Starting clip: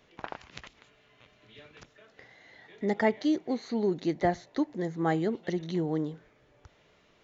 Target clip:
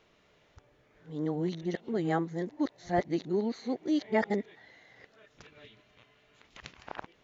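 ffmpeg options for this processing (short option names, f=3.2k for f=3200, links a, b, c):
-af "areverse,volume=-2dB"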